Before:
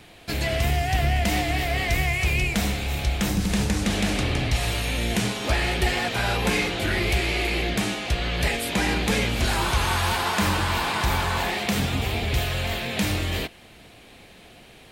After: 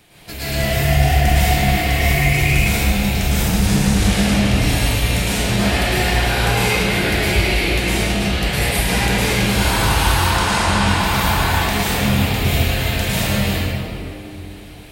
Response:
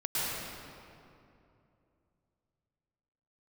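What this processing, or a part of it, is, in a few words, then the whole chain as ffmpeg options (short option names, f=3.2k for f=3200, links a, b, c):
stairwell: -filter_complex "[0:a]asettb=1/sr,asplit=3[a][b][c];[a]atrim=end=10.144[d];[b]atrim=start=10.14:end=10.88,asetpts=PTS-STARTPTS,afade=t=in:d=0.004:c=qsin,afade=t=out:st=0.736:d=0.004:c=qsin,lowpass=f=10k:w=0.5412,lowpass=f=10k:w=1.3066[e];[c]atrim=start=10.876[f];[d][e]acrossfade=d=0.004:c1=hsin:c2=qsin[g];[g][f]acrossfade=d=0.004:c1=qsin:c2=hsin,highshelf=f=7.7k:g=10[h];[1:a]atrim=start_sample=2205[i];[h][i]afir=irnorm=-1:irlink=0,volume=-2.5dB"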